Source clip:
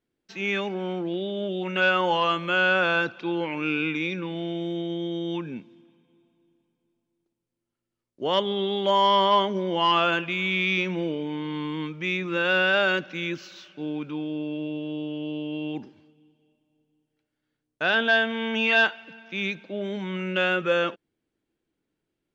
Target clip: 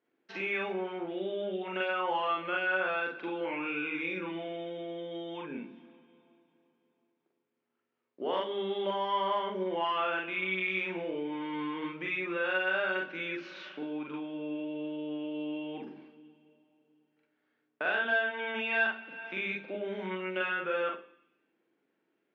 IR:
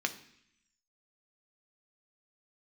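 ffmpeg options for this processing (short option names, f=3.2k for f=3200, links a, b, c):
-filter_complex "[0:a]acompressor=threshold=-41dB:ratio=2.5,highpass=320,lowpass=2.3k,asplit=2[a][b];[1:a]atrim=start_sample=2205,adelay=43[c];[b][c]afir=irnorm=-1:irlink=0,volume=-3.5dB[d];[a][d]amix=inputs=2:normalize=0,volume=4dB"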